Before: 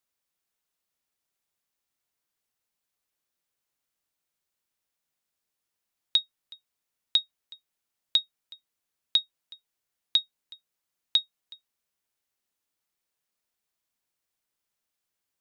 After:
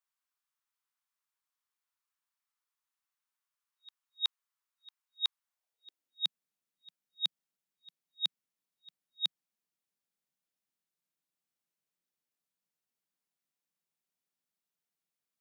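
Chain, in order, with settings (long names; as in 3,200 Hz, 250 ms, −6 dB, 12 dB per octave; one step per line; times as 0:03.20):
played backwards from end to start
high-pass filter sweep 1,100 Hz → 170 Hz, 0:05.42–0:06.24
level −8 dB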